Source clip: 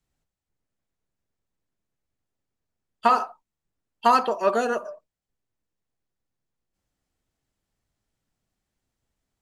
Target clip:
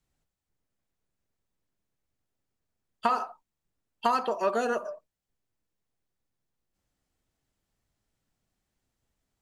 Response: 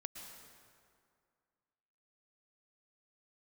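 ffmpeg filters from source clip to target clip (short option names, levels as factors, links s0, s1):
-af "acompressor=threshold=0.0562:ratio=2.5"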